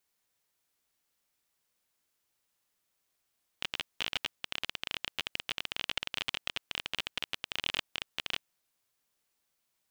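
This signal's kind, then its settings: random clicks 25/s -15 dBFS 4.86 s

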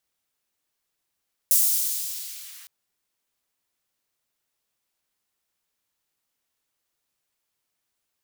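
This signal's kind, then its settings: swept filtered noise white, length 1.16 s highpass, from 8200 Hz, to 1200 Hz, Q 0.79, linear, gain ramp -31 dB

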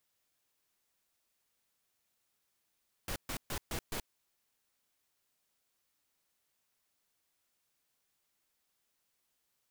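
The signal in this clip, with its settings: noise bursts pink, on 0.08 s, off 0.13 s, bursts 5, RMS -37.5 dBFS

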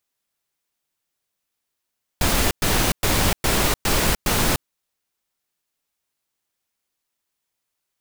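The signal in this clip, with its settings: noise bursts pink, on 0.30 s, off 0.11 s, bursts 6, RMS -19 dBFS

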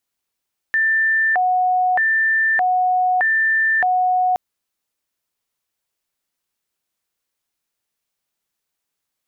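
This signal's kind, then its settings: siren hi-lo 734–1780 Hz 0.81/s sine -14 dBFS 3.62 s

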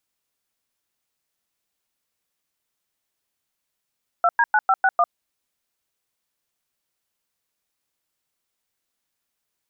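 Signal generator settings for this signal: DTMF "2D9561", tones 50 ms, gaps 0.1 s, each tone -16.5 dBFS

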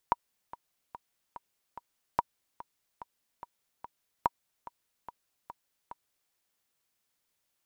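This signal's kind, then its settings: metronome 145 bpm, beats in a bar 5, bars 3, 955 Hz, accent 18 dB -11 dBFS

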